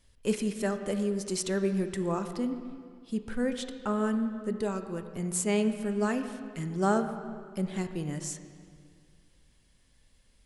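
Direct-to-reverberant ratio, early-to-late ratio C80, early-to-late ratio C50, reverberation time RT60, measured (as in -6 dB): 7.5 dB, 10.0 dB, 9.0 dB, 2.1 s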